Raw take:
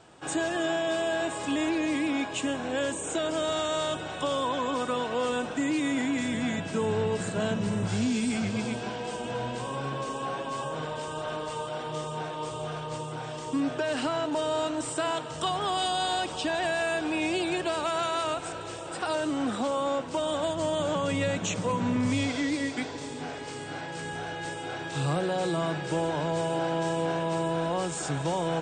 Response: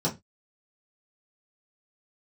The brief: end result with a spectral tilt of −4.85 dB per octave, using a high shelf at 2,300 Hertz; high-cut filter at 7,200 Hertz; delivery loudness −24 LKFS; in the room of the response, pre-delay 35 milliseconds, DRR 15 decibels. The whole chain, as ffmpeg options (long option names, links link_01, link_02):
-filter_complex "[0:a]lowpass=7200,highshelf=frequency=2300:gain=-5,asplit=2[link_01][link_02];[1:a]atrim=start_sample=2205,adelay=35[link_03];[link_02][link_03]afir=irnorm=-1:irlink=0,volume=-24dB[link_04];[link_01][link_04]amix=inputs=2:normalize=0,volume=6dB"